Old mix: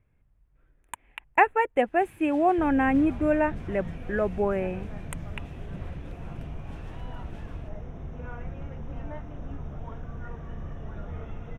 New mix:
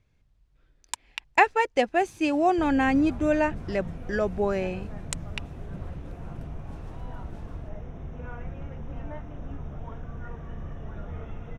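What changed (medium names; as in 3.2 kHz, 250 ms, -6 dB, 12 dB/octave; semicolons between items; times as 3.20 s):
speech: remove Butterworth band-stop 5.1 kHz, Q 0.66; first sound: add high-order bell 2.3 kHz -8 dB 1.3 oct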